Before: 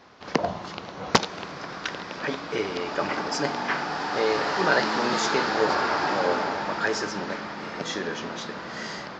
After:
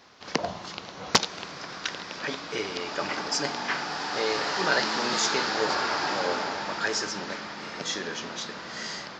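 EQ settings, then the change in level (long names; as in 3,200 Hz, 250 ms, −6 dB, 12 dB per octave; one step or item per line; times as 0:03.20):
high-shelf EQ 2,700 Hz +11 dB
−5.0 dB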